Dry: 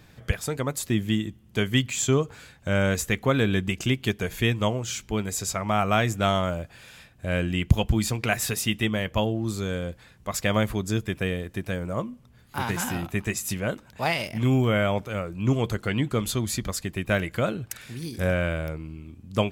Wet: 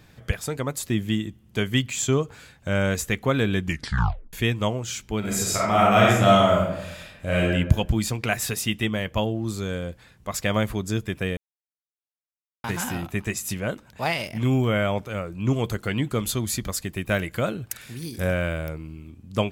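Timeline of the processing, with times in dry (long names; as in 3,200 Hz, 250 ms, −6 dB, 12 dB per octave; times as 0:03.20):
0:03.63: tape stop 0.70 s
0:05.19–0:07.49: thrown reverb, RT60 0.88 s, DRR −5 dB
0:11.37–0:12.64: silence
0:15.56–0:19.10: high-shelf EQ 10,000 Hz +7 dB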